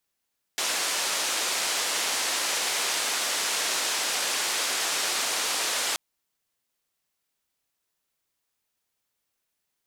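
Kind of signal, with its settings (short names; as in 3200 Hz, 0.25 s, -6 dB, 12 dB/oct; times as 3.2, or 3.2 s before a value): noise band 410–7800 Hz, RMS -27.5 dBFS 5.38 s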